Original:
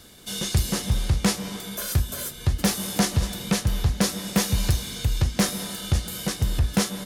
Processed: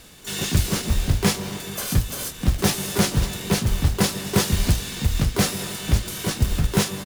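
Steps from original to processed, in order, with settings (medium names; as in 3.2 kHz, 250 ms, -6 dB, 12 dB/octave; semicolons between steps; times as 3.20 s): short-mantissa float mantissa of 2-bit; harmony voices -12 st -7 dB, -5 st -5 dB, +12 st -6 dB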